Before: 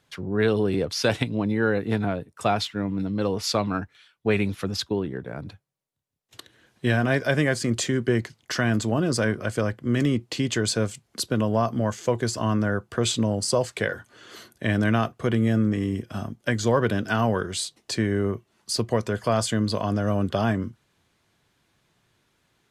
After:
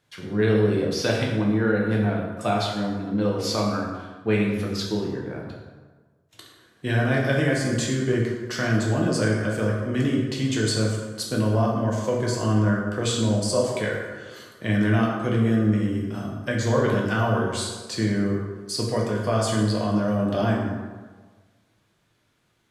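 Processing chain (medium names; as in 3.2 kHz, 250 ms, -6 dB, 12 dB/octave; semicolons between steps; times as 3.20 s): plate-style reverb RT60 1.4 s, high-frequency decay 0.6×, DRR -2.5 dB; trim -4.5 dB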